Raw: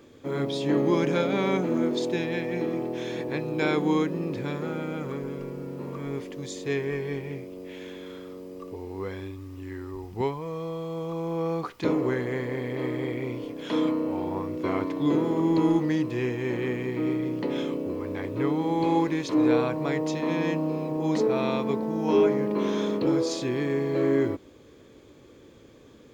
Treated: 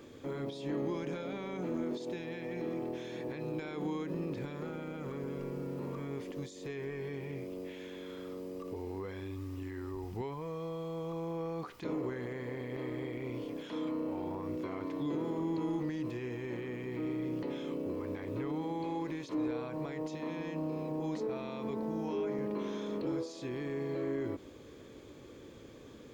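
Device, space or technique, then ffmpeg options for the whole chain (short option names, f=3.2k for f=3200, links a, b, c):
de-esser from a sidechain: -filter_complex "[0:a]asplit=2[a][b];[b]highpass=f=6.6k:p=1,apad=whole_len=1152595[c];[a][c]sidechaincompress=threshold=-58dB:ratio=3:attack=1.1:release=51"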